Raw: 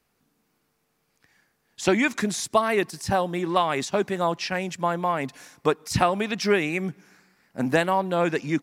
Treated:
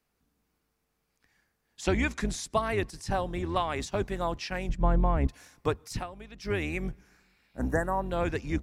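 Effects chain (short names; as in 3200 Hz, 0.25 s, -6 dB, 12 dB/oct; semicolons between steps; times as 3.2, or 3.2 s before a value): octaver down 2 oct, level +1 dB; 1.83–3.8 LPF 11000 Hz 12 dB/oct; 4.69–5.27 tilt -3.5 dB/oct; 5.82–6.63 dip -14 dB, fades 0.25 s; 7.18–8.03 spectral repair 2000–5300 Hz both; gain -7 dB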